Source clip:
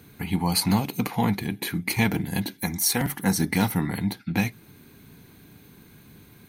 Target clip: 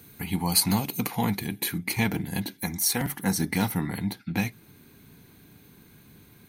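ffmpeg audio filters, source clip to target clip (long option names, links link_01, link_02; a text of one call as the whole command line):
ffmpeg -i in.wav -af "asetnsamples=nb_out_samples=441:pad=0,asendcmd='1.78 highshelf g 2',highshelf=frequency=5300:gain=9.5,volume=-3dB" out.wav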